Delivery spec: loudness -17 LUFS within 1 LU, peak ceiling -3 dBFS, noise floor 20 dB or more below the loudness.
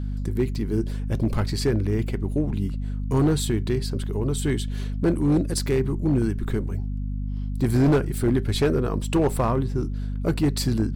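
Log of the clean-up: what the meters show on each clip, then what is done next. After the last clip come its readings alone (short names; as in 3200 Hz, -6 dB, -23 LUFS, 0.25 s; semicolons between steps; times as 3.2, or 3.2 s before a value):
clipped 1.5%; flat tops at -14.5 dBFS; hum 50 Hz; harmonics up to 250 Hz; hum level -25 dBFS; loudness -24.5 LUFS; peak -14.5 dBFS; loudness target -17.0 LUFS
-> clip repair -14.5 dBFS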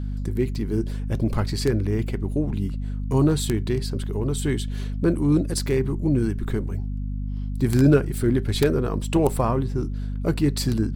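clipped 0.0%; hum 50 Hz; harmonics up to 250 Hz; hum level -25 dBFS
-> de-hum 50 Hz, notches 5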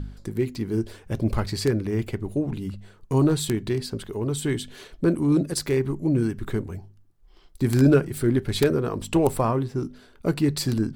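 hum none; loudness -24.5 LUFS; peak -5.5 dBFS; loudness target -17.0 LUFS
-> gain +7.5 dB; limiter -3 dBFS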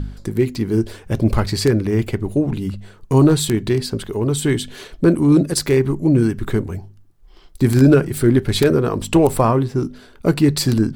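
loudness -17.5 LUFS; peak -3.0 dBFS; noise floor -46 dBFS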